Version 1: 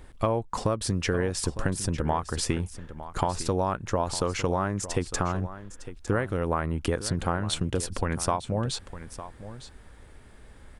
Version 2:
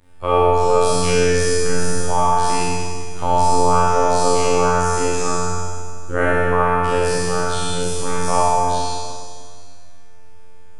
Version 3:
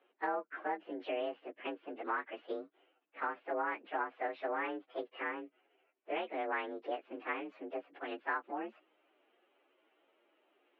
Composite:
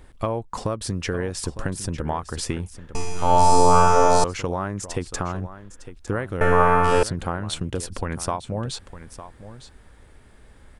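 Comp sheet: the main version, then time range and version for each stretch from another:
1
2.95–4.24 s: from 2
6.41–7.03 s: from 2
not used: 3

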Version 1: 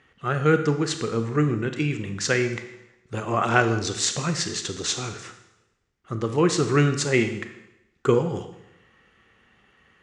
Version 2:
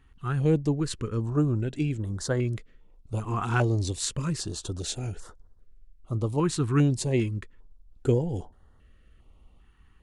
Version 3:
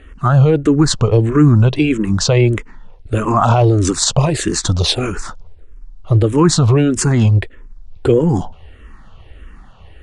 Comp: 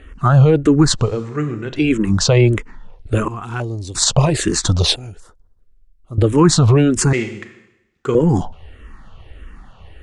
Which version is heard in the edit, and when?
3
1.09–1.77 s: from 1, crossfade 0.24 s
3.28–3.95 s: from 2
4.96–6.18 s: from 2
7.13–8.15 s: from 1

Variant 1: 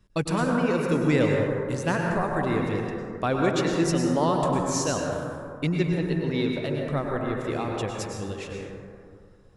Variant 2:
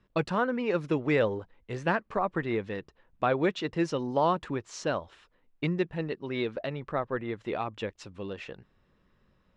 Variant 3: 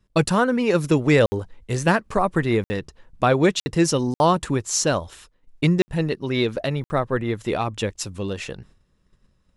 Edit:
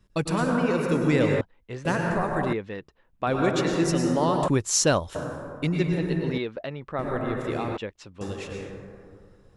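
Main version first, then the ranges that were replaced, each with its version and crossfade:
1
1.41–1.85 s: from 2
2.53–3.27 s: from 2
4.48–5.15 s: from 3
6.38–6.99 s: from 2
7.77–8.21 s: from 2

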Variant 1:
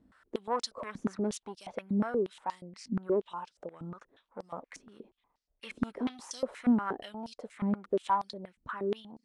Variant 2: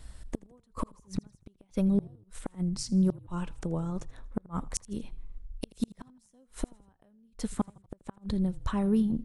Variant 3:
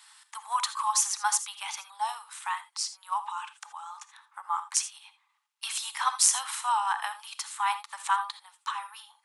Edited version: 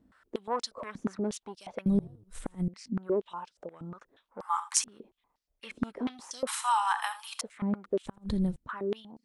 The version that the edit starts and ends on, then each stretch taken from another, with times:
1
1.86–2.68 s: from 2
4.41–4.84 s: from 3
6.47–7.41 s: from 3
8.06–8.56 s: from 2

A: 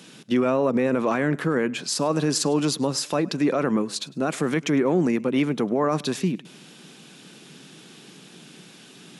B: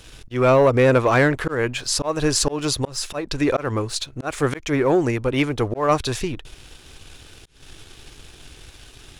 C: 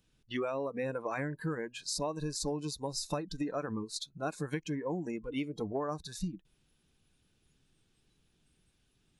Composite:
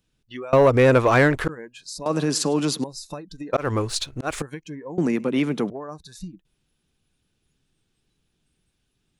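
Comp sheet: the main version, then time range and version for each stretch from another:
C
0.53–1.49 s: from B
2.06–2.84 s: from A
3.53–4.42 s: from B
4.98–5.70 s: from A

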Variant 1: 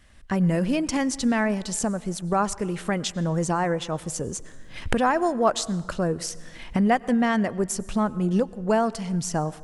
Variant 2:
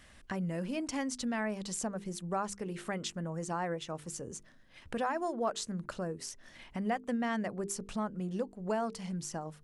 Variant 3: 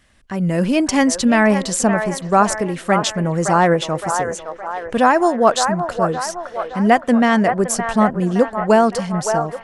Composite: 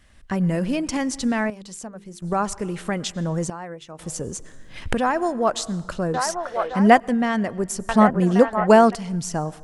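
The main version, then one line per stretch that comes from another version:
1
1.50–2.22 s: from 2
3.50–3.99 s: from 2
6.14–7.00 s: from 3
7.89–8.95 s: from 3

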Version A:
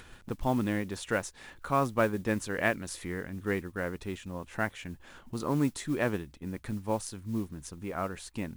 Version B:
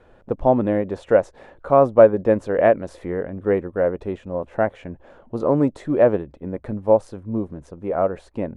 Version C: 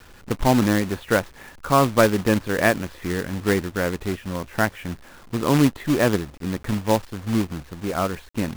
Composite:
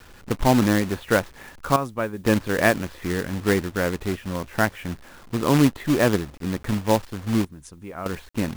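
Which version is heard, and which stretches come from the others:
C
1.76–2.24 s: from A
7.45–8.06 s: from A
not used: B

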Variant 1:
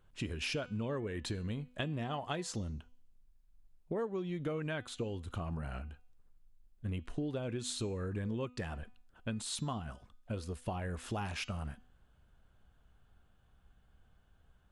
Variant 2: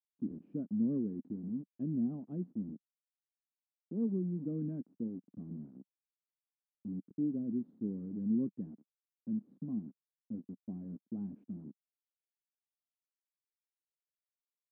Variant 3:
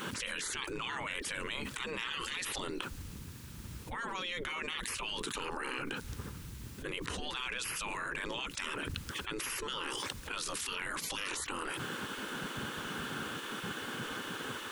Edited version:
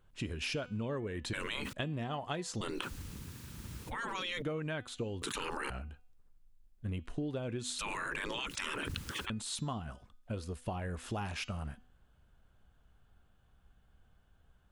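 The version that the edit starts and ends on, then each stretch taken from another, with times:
1
1.33–1.73 s: from 3
2.61–4.42 s: from 3
5.22–5.70 s: from 3
7.79–9.30 s: from 3
not used: 2

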